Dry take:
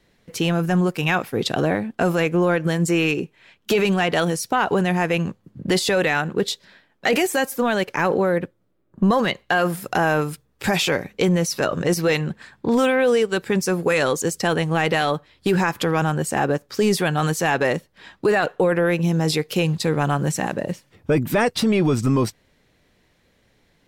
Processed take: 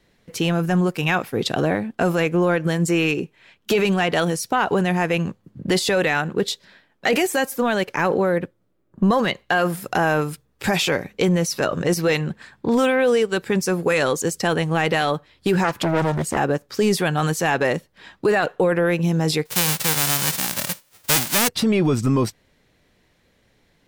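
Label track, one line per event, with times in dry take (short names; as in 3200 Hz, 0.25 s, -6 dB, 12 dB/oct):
15.640000	16.370000	Doppler distortion depth 0.68 ms
19.450000	21.470000	spectral whitening exponent 0.1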